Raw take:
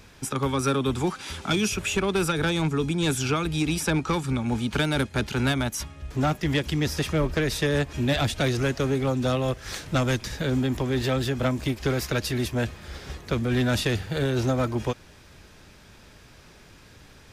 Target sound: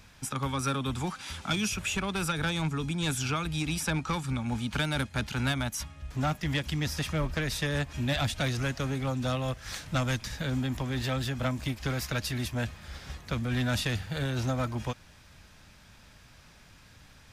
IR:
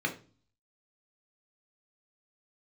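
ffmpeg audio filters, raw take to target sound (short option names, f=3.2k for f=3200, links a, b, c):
-af "equalizer=f=390:w=1.8:g=-10,volume=-3.5dB"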